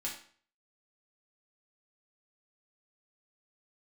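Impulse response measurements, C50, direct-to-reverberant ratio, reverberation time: 6.5 dB, −4.5 dB, 0.45 s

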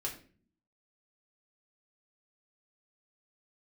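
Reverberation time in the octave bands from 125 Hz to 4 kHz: 0.80, 0.85, 0.50, 0.35, 0.40, 0.35 seconds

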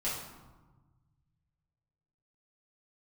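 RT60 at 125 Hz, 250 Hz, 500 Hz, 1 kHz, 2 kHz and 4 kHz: 2.6, 1.7, 1.2, 1.3, 0.90, 0.70 seconds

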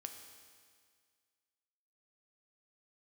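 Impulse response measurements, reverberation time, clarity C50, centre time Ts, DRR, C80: 1.9 s, 6.5 dB, 36 ms, 4.5 dB, 7.5 dB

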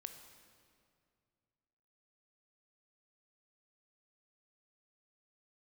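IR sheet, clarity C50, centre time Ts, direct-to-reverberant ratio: 8.0 dB, 29 ms, 6.5 dB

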